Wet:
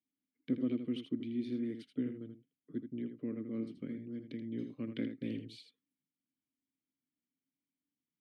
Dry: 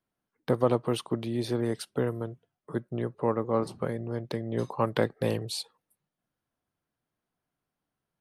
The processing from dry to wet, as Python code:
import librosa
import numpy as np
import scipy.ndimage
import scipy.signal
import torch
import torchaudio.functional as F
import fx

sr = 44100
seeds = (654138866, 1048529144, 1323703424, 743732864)

y = fx.vowel_filter(x, sr, vowel='i')
y = fx.low_shelf(y, sr, hz=220.0, db=9.5)
y = y + 10.0 ** (-8.5 / 20.0) * np.pad(y, (int(80 * sr / 1000.0), 0))[:len(y)]
y = y * librosa.db_to_amplitude(-1.0)